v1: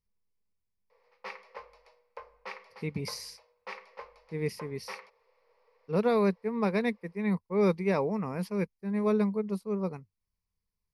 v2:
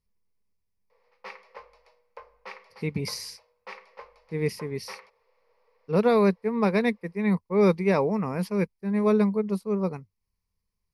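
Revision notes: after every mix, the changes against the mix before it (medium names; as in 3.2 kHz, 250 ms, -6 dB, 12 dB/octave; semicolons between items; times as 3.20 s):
speech +5.0 dB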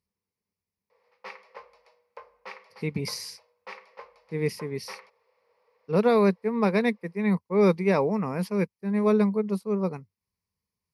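master: add high-pass 99 Hz 12 dB/octave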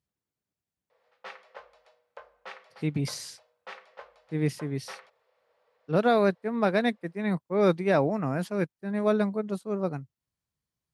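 master: remove rippled EQ curve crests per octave 0.86, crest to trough 10 dB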